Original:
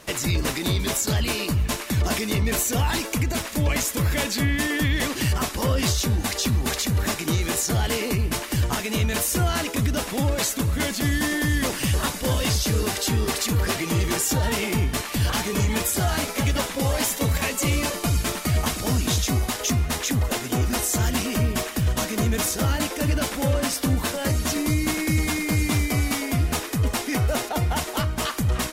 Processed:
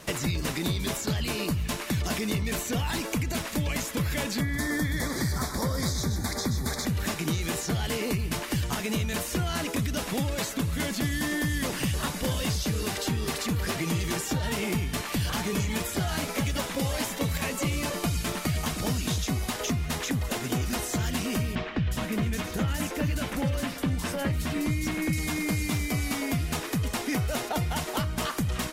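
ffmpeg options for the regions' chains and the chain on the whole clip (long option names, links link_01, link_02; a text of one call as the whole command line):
ffmpeg -i in.wav -filter_complex "[0:a]asettb=1/sr,asplit=3[link_01][link_02][link_03];[link_01]atrim=end=4.414[link_04];[link_02]atrim=start=4.41:end=6.86,asetpts=PTS-STARTPTS,afade=type=in:duration=0.004:curve=qsin,afade=type=out:start_time=2.446:duration=0.004:curve=qsin,asuperstop=centerf=2800:order=4:qfactor=1.8,aecho=1:1:125:0.316,atrim=end_sample=108045[link_05];[link_03]atrim=start=6.856[link_06];[link_04][link_05]acrossfade=duration=0.004:curve1=hsin:curve2=qsin[link_07];[link_07][link_06]acrossfade=duration=0.004:curve1=qsin:curve2=hsin,asettb=1/sr,asplit=3[link_08][link_09][link_10];[link_08]atrim=end=21.554[link_11];[link_09]atrim=start=21.55:end=25.13,asetpts=PTS-STARTPTS,afade=type=in:duration=0.004:curve=qsin,afade=type=out:start_time=3.576:duration=0.004:curve=qsin,bass=frequency=250:gain=4,treble=frequency=4000:gain=-9,acrossover=split=4300[link_12][link_13];[link_13]adelay=360[link_14];[link_12][link_14]amix=inputs=2:normalize=0,atrim=end_sample=157878[link_15];[link_10]atrim=start=25.126[link_16];[link_11][link_15]acrossfade=duration=0.004:curve1=hsin:curve2=qsin[link_17];[link_17][link_16]acrossfade=duration=0.004:curve1=qsin:curve2=hsin,equalizer=frequency=160:width=2.6:gain=6.5,acrossover=split=1900|4600[link_18][link_19][link_20];[link_18]acompressor=threshold=-27dB:ratio=4[link_21];[link_19]acompressor=threshold=-38dB:ratio=4[link_22];[link_20]acompressor=threshold=-38dB:ratio=4[link_23];[link_21][link_22][link_23]amix=inputs=3:normalize=0" out.wav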